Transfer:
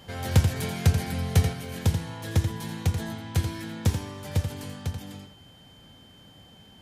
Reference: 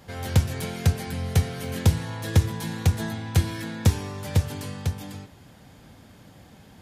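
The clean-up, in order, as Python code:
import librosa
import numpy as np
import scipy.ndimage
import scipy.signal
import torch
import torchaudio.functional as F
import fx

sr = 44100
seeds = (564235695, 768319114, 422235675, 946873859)

y = fx.notch(x, sr, hz=3100.0, q=30.0)
y = fx.fix_echo_inverse(y, sr, delay_ms=85, level_db=-8.0)
y = fx.gain(y, sr, db=fx.steps((0.0, 0.0), (1.53, 4.5)))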